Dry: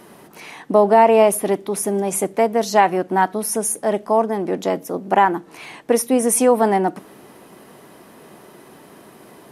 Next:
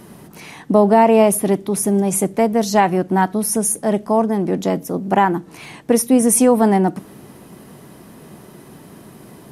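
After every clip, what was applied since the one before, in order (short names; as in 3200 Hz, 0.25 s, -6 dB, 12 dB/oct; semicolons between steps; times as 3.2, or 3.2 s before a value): tone controls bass +13 dB, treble +4 dB; gain -1 dB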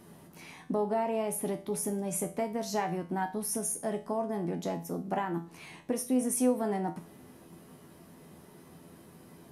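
compressor 3:1, threshold -16 dBFS, peak gain reduction 7 dB; resonator 84 Hz, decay 0.34 s, harmonics all, mix 80%; gain -4.5 dB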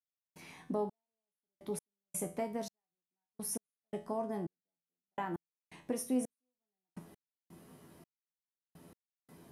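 step gate "..xxx....x" 84 bpm -60 dB; gain -4.5 dB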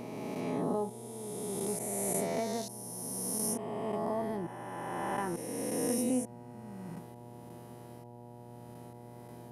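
spectral swells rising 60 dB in 2.97 s; buzz 120 Hz, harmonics 8, -50 dBFS -3 dB/oct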